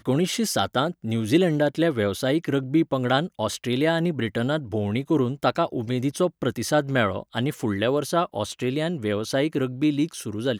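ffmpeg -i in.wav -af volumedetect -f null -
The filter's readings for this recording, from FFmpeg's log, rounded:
mean_volume: -23.9 dB
max_volume: -7.0 dB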